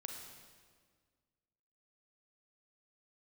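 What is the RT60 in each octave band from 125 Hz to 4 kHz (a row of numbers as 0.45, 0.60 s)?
2.1, 2.0, 1.8, 1.6, 1.5, 1.4 s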